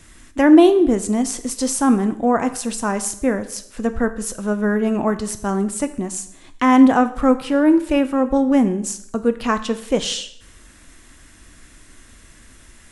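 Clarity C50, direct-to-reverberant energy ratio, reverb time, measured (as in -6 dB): 14.0 dB, 10.0 dB, 0.70 s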